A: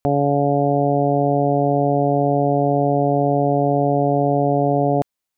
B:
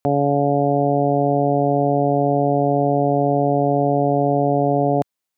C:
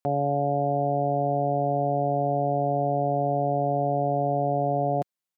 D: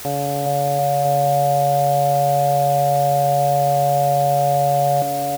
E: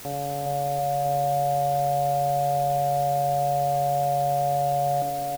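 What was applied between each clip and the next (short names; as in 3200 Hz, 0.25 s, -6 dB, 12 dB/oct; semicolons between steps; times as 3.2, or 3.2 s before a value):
HPF 98 Hz
comb 5.6 ms, depth 38%; gain -8 dB
bouncing-ball echo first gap 0.41 s, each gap 0.8×, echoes 5; requantised 6-bit, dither triangular; gain +2.5 dB
added noise pink -41 dBFS; early reflections 59 ms -15 dB, 79 ms -11.5 dB; gain -8.5 dB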